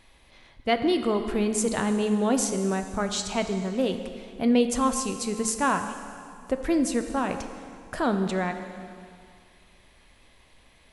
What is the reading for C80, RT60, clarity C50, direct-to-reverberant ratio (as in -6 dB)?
9.0 dB, 2.3 s, 8.5 dB, 7.0 dB